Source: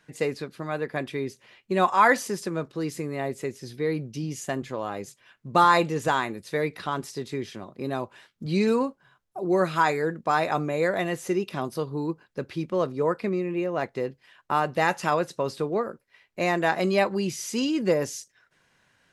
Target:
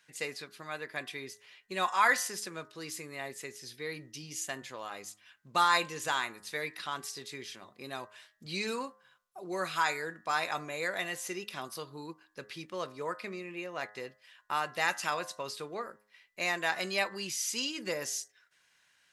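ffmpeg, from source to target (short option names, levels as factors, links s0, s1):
-af "tiltshelf=f=970:g=-9.5,bandreject=f=104.6:t=h:w=4,bandreject=f=209.2:t=h:w=4,bandreject=f=313.8:t=h:w=4,bandreject=f=418.4:t=h:w=4,bandreject=f=523:t=h:w=4,bandreject=f=627.6:t=h:w=4,bandreject=f=732.2:t=h:w=4,bandreject=f=836.8:t=h:w=4,bandreject=f=941.4:t=h:w=4,bandreject=f=1046:t=h:w=4,bandreject=f=1150.6:t=h:w=4,bandreject=f=1255.2:t=h:w=4,bandreject=f=1359.8:t=h:w=4,bandreject=f=1464.4:t=h:w=4,bandreject=f=1569:t=h:w=4,bandreject=f=1673.6:t=h:w=4,bandreject=f=1778.2:t=h:w=4,bandreject=f=1882.8:t=h:w=4,bandreject=f=1987.4:t=h:w=4,volume=0.398"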